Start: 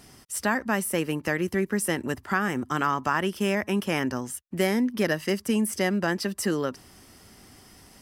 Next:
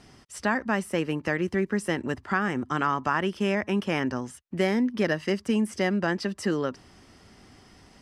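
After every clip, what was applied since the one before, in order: air absorption 84 m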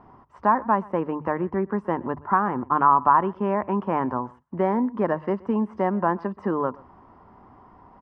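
synth low-pass 1000 Hz, resonance Q 5.6; notches 50/100/150 Hz; echo 0.124 s -23.5 dB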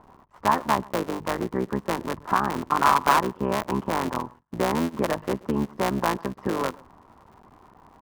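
cycle switcher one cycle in 3, muted

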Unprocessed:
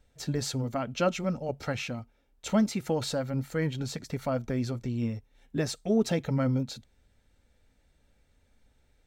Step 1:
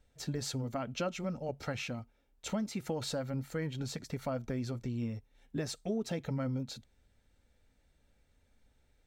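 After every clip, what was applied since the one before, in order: compressor 4:1, threshold -28 dBFS, peak gain reduction 8.5 dB; gain -3.5 dB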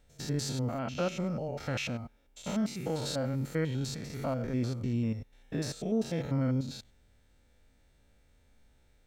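stepped spectrum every 0.1 s; gain +6 dB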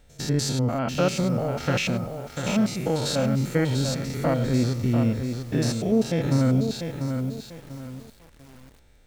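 lo-fi delay 0.694 s, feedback 35%, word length 9-bit, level -6.5 dB; gain +8.5 dB

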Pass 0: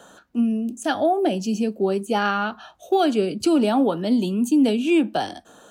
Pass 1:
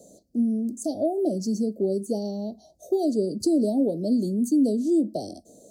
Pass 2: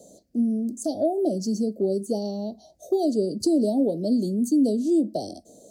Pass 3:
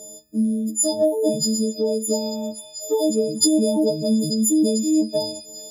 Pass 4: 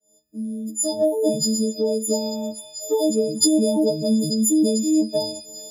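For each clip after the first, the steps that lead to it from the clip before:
Chebyshev band-stop 630–4600 Hz, order 4; in parallel at -2 dB: compressor, threshold -29 dBFS, peak gain reduction 14 dB; on the sum: gain -4.5 dB
bell 1900 Hz +11.5 dB 1.5 oct
frequency quantiser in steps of 6 st; delay with a stepping band-pass 0.444 s, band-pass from 2600 Hz, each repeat 0.7 oct, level -5 dB; gain +2.5 dB
opening faded in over 1.16 s

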